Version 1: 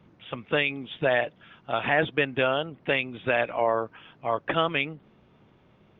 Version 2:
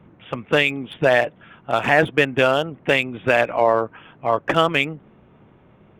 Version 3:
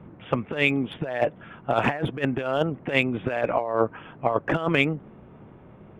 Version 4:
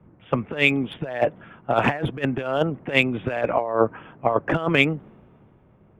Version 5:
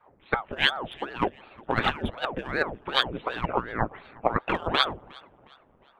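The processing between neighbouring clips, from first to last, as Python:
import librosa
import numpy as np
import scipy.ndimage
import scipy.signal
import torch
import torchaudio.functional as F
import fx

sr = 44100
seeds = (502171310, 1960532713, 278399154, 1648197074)

y1 = fx.wiener(x, sr, points=9)
y1 = F.gain(torch.from_numpy(y1), 7.5).numpy()
y2 = fx.high_shelf(y1, sr, hz=2600.0, db=-11.5)
y2 = fx.over_compress(y2, sr, threshold_db=-22.0, ratio=-0.5)
y3 = fx.band_widen(y2, sr, depth_pct=40)
y3 = F.gain(torch.from_numpy(y3), 2.0).numpy()
y4 = fx.hpss(y3, sr, part='harmonic', gain_db=-8)
y4 = fx.echo_tape(y4, sr, ms=358, feedback_pct=44, wet_db=-23, lp_hz=5700.0, drive_db=5.0, wow_cents=24)
y4 = fx.ring_lfo(y4, sr, carrier_hz=570.0, swing_pct=90, hz=2.7)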